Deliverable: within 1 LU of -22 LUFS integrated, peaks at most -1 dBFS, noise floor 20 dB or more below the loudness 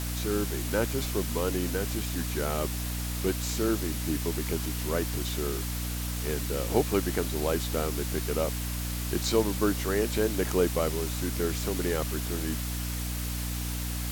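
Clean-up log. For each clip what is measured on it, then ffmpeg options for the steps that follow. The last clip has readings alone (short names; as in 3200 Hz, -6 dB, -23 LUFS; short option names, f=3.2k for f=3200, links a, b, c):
hum 60 Hz; harmonics up to 300 Hz; hum level -31 dBFS; noise floor -33 dBFS; noise floor target -50 dBFS; loudness -29.5 LUFS; peak -10.0 dBFS; loudness target -22.0 LUFS
-> -af "bandreject=f=60:t=h:w=6,bandreject=f=120:t=h:w=6,bandreject=f=180:t=h:w=6,bandreject=f=240:t=h:w=6,bandreject=f=300:t=h:w=6"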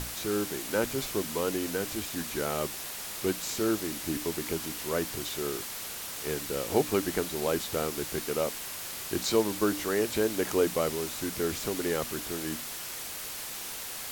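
hum none; noise floor -39 dBFS; noise floor target -51 dBFS
-> -af "afftdn=nr=12:nf=-39"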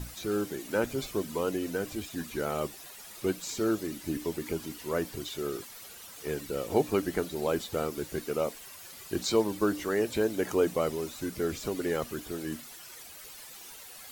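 noise floor -48 dBFS; noise floor target -52 dBFS
-> -af "afftdn=nr=6:nf=-48"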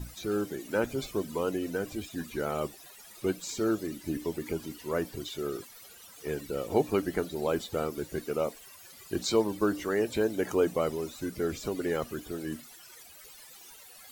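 noise floor -52 dBFS; loudness -32.0 LUFS; peak -12.0 dBFS; loudness target -22.0 LUFS
-> -af "volume=10dB"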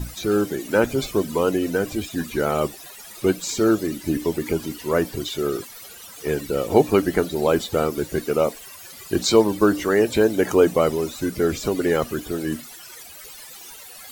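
loudness -22.0 LUFS; peak -2.0 dBFS; noise floor -42 dBFS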